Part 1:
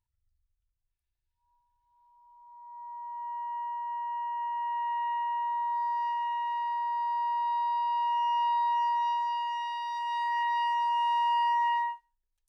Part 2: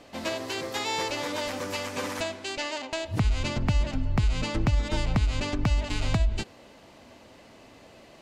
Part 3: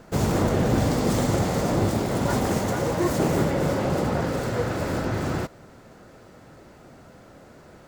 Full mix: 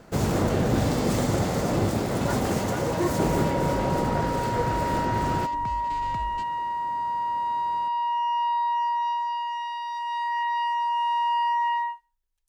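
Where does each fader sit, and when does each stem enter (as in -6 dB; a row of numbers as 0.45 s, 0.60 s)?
+2.5 dB, -12.5 dB, -1.5 dB; 0.00 s, 0.00 s, 0.00 s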